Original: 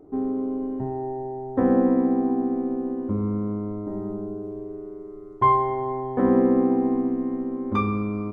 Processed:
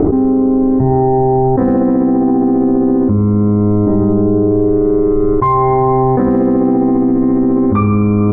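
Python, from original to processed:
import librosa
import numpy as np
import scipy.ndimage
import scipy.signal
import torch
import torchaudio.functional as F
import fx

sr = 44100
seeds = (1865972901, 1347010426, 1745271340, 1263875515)

p1 = scipy.signal.sosfilt(scipy.signal.butter(4, 2200.0, 'lowpass', fs=sr, output='sos'), x)
p2 = fx.low_shelf(p1, sr, hz=180.0, db=9.5)
p3 = fx.clip_asym(p2, sr, top_db=-11.5, bottom_db=-8.5)
p4 = p2 + (p3 * librosa.db_to_amplitude(-9.5))
p5 = fx.echo_feedback(p4, sr, ms=70, feedback_pct=36, wet_db=-18.5)
y = fx.env_flatten(p5, sr, amount_pct=100)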